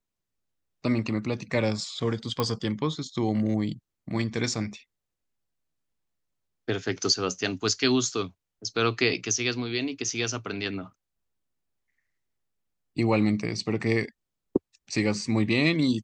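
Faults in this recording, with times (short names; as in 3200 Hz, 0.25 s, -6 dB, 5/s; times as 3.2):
2.4 pop -12 dBFS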